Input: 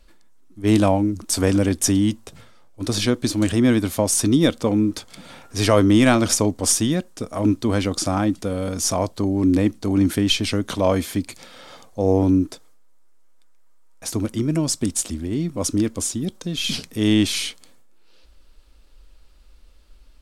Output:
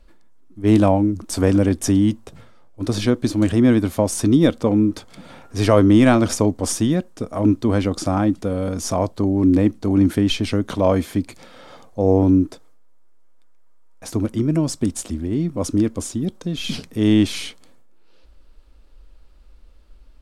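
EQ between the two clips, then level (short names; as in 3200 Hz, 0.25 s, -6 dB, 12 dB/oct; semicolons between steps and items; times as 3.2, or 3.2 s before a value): high shelf 2100 Hz -9.5 dB; +2.5 dB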